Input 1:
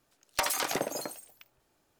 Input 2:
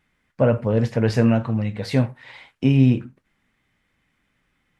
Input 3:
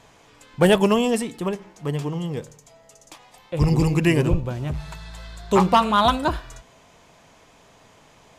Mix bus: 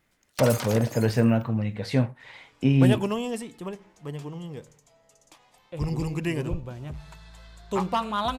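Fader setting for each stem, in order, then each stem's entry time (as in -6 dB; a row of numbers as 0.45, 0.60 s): -3.0, -3.5, -9.5 dB; 0.00, 0.00, 2.20 s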